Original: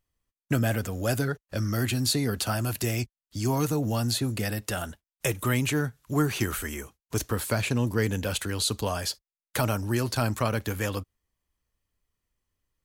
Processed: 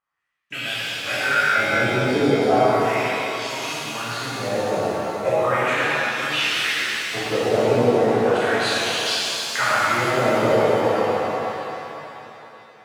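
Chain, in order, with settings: wah-wah 0.36 Hz 430–3200 Hz, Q 3.4; 0.94–1.71 s: flutter echo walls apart 3.4 m, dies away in 0.39 s; pitch-shifted reverb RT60 3.2 s, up +7 st, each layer -8 dB, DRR -12 dB; trim +8 dB

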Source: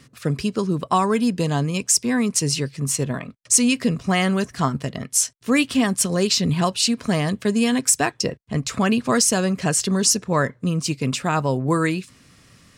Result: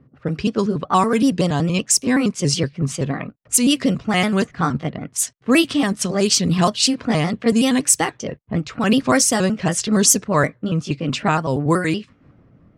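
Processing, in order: pitch shift switched off and on +2 st, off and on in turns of 94 ms; level-controlled noise filter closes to 680 Hz, open at -15.5 dBFS; random flutter of the level, depth 60%; trim +6 dB

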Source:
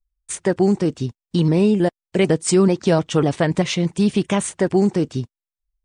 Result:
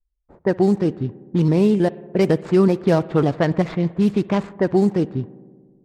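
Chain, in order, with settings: median filter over 15 samples; spring tank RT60 2.1 s, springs 59 ms, chirp 40 ms, DRR 18 dB; level-controlled noise filter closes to 540 Hz, open at -12 dBFS

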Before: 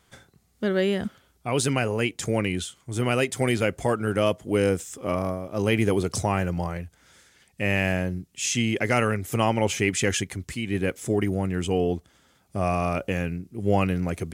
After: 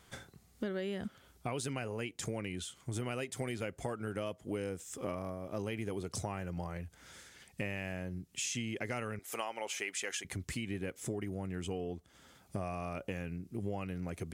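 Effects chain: 9.19–10.25 s: high-pass 600 Hz 12 dB/octave; compression 6:1, threshold -37 dBFS, peak gain reduction 19.5 dB; trim +1 dB

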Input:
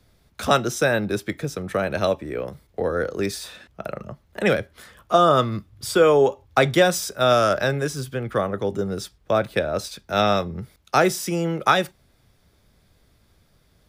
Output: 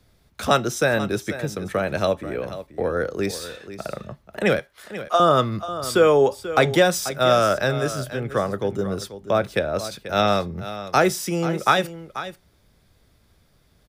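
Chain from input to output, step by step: 4.59–5.20 s: high-pass 640 Hz 12 dB/octave; delay 487 ms -13 dB

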